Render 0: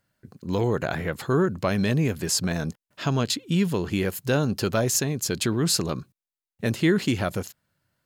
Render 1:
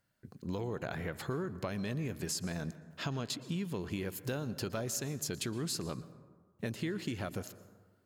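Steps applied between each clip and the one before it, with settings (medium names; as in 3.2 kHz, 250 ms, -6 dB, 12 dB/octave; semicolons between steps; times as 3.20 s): compression, threshold -29 dBFS, peak gain reduction 12.5 dB; plate-style reverb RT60 1.5 s, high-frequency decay 0.4×, pre-delay 105 ms, DRR 15 dB; trim -5 dB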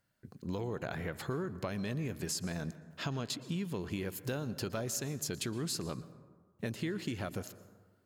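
no audible change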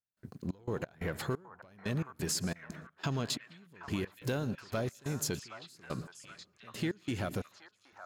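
waveshaping leveller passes 1; trance gate ".xx.x.xx...x" 89 bpm -24 dB; repeats whose band climbs or falls 772 ms, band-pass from 1.1 kHz, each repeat 0.7 oct, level -6 dB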